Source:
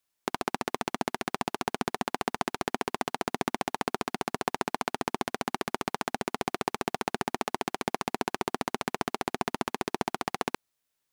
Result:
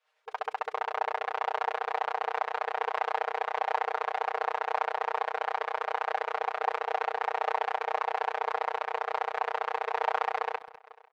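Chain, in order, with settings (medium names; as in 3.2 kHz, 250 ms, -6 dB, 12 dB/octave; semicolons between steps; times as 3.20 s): low-pass 2.4 kHz 12 dB/octave; feedback delay 497 ms, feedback 48%, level -13.5 dB; tremolo 11 Hz, depth 38%; peak limiter -17 dBFS, peak gain reduction 7.5 dB; expander -34 dBFS; brick-wall FIR high-pass 430 Hz; comb 6.5 ms, depth 94%; speakerphone echo 200 ms, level -15 dB; swell ahead of each attack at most 140 dB/s; trim +8 dB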